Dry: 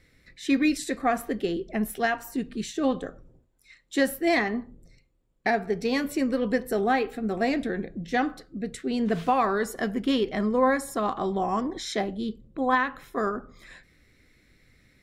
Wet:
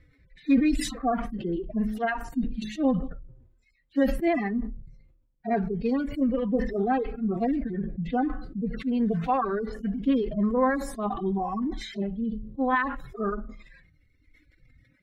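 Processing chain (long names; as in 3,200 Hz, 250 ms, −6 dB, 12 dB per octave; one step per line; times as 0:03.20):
harmonic-percussive split with one part muted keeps harmonic
bass and treble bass +9 dB, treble −13 dB
hum removal 213.9 Hz, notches 3
reverb reduction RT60 1.9 s
level that may fall only so fast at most 63 dB per second
level −1.5 dB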